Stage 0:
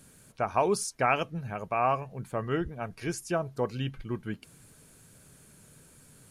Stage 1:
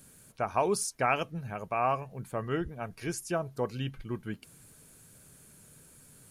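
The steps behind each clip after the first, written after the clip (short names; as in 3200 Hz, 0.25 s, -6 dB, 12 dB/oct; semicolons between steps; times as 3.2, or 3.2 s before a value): high shelf 11000 Hz +9 dB; gain -2 dB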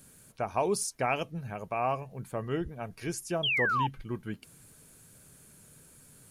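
dynamic EQ 1400 Hz, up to -6 dB, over -45 dBFS, Q 1.7; painted sound fall, 3.43–3.87, 830–3400 Hz -28 dBFS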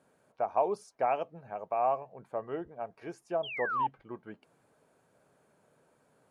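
band-pass 710 Hz, Q 1.6; gain +3 dB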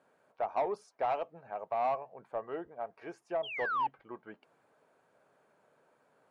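overdrive pedal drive 15 dB, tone 2000 Hz, clips at -15 dBFS; gain -6.5 dB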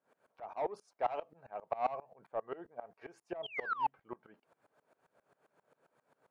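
dB-ramp tremolo swelling 7.5 Hz, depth 23 dB; gain +3.5 dB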